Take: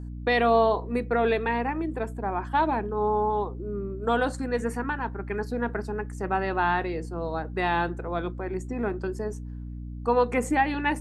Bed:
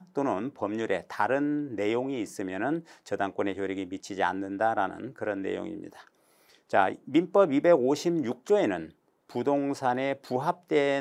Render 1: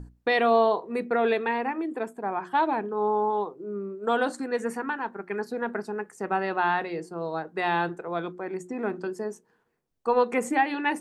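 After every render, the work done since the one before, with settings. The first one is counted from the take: hum notches 60/120/180/240/300/360 Hz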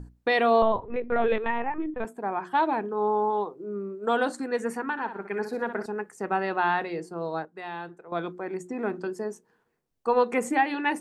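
0.62–2.05 s: LPC vocoder at 8 kHz pitch kept; 4.91–5.86 s: flutter echo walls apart 10.6 m, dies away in 0.4 s; 7.45–8.12 s: gain -11 dB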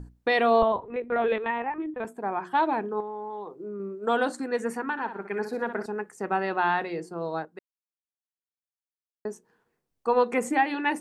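0.63–2.05 s: high-pass 190 Hz 6 dB/octave; 3.00–3.80 s: compression, threshold -32 dBFS; 7.59–9.25 s: mute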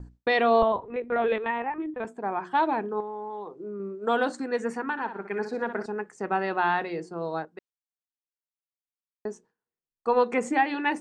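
gate with hold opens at -40 dBFS; low-pass 7.7 kHz 24 dB/octave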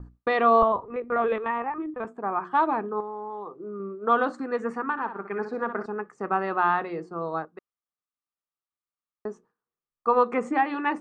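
low-pass 1.8 kHz 6 dB/octave; peaking EQ 1.2 kHz +13.5 dB 0.27 oct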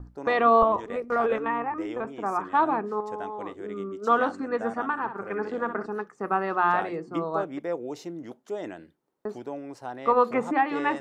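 add bed -10 dB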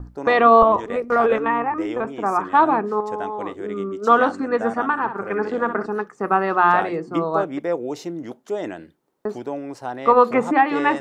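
trim +7 dB; peak limiter -3 dBFS, peak gain reduction 2 dB

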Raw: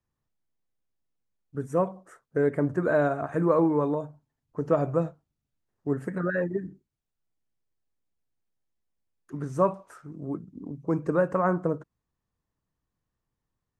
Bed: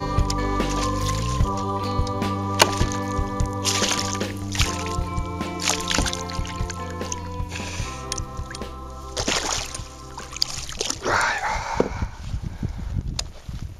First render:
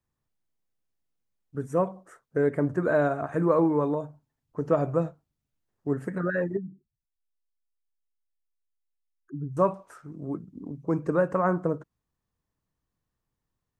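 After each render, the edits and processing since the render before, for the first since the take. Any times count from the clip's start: 6.57–9.57 s: spectral contrast enhancement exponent 2.2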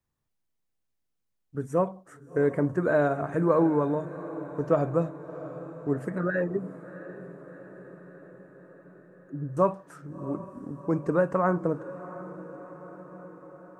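echo that smears into a reverb 703 ms, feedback 64%, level -15 dB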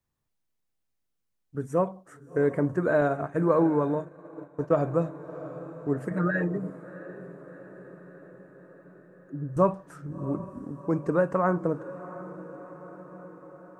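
3.01–4.85 s: expander -30 dBFS; 6.10–6.70 s: comb 6.5 ms, depth 82%; 9.56–10.63 s: bass shelf 130 Hz +11 dB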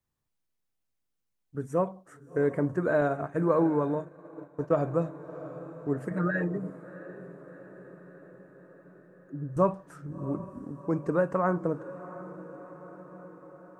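trim -2 dB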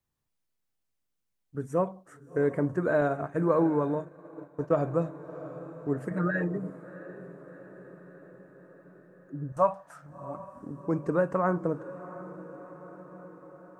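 9.52–10.63 s: resonant low shelf 510 Hz -9.5 dB, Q 3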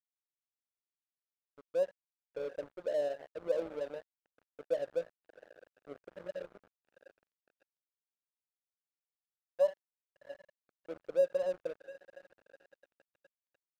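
two resonant band-passes 1.4 kHz, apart 2.7 oct; crossover distortion -46 dBFS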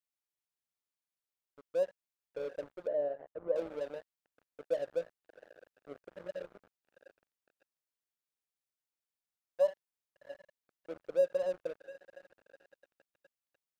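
2.87–3.56 s: low-pass 1.2 kHz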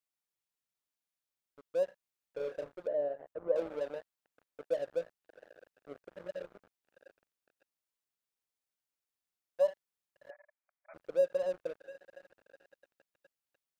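1.85–2.76 s: doubling 33 ms -7 dB; 3.32–4.64 s: peaking EQ 940 Hz +2.5 dB 2.5 oct; 10.30–10.94 s: brick-wall FIR band-pass 570–2500 Hz

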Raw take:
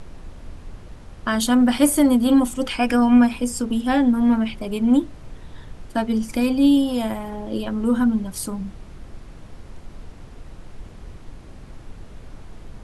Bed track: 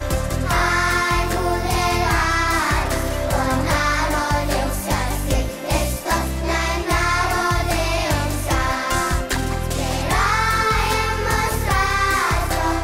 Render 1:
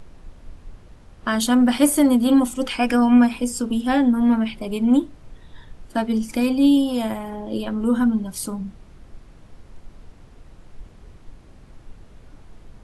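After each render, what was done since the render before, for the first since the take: noise print and reduce 6 dB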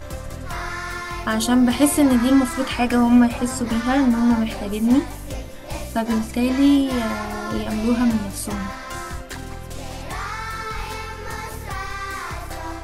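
add bed track -11 dB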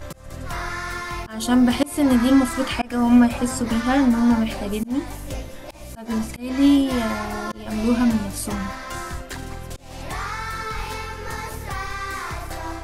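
slow attack 280 ms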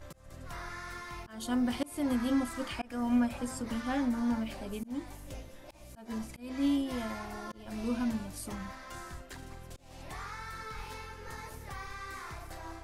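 trim -13.5 dB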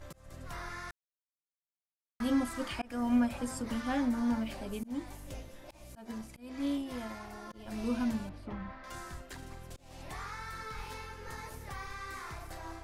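0.91–2.20 s: mute; 6.11–7.54 s: valve stage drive 24 dB, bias 0.75; 8.29–8.84 s: distance through air 370 m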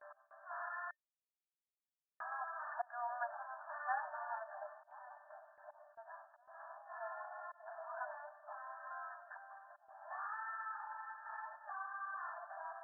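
FFT band-pass 590–1800 Hz; gate with hold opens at -53 dBFS

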